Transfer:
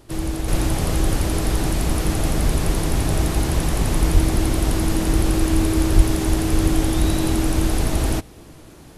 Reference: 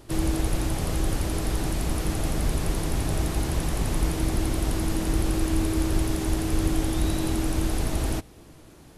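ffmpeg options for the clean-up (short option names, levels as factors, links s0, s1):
-filter_complex "[0:a]asplit=3[s0][s1][s2];[s0]afade=t=out:st=4.13:d=0.02[s3];[s1]highpass=f=140:w=0.5412,highpass=f=140:w=1.3066,afade=t=in:st=4.13:d=0.02,afade=t=out:st=4.25:d=0.02[s4];[s2]afade=t=in:st=4.25:d=0.02[s5];[s3][s4][s5]amix=inputs=3:normalize=0,asplit=3[s6][s7][s8];[s6]afade=t=out:st=5.96:d=0.02[s9];[s7]highpass=f=140:w=0.5412,highpass=f=140:w=1.3066,afade=t=in:st=5.96:d=0.02,afade=t=out:st=6.08:d=0.02[s10];[s8]afade=t=in:st=6.08:d=0.02[s11];[s9][s10][s11]amix=inputs=3:normalize=0,asetnsamples=n=441:p=0,asendcmd='0.48 volume volume -6dB',volume=1"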